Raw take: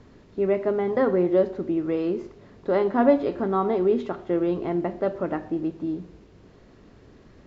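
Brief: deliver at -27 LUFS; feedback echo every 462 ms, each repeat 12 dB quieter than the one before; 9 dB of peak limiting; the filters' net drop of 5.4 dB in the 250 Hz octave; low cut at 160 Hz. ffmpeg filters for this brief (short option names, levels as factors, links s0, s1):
-af "highpass=160,equalizer=f=250:t=o:g=-7.5,alimiter=limit=0.119:level=0:latency=1,aecho=1:1:462|924|1386:0.251|0.0628|0.0157,volume=1.33"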